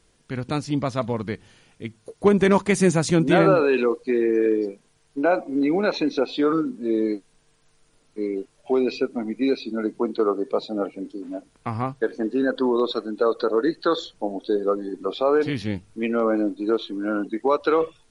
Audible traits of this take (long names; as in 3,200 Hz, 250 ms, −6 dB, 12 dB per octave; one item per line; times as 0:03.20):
background noise floor −62 dBFS
spectral slope −5.5 dB per octave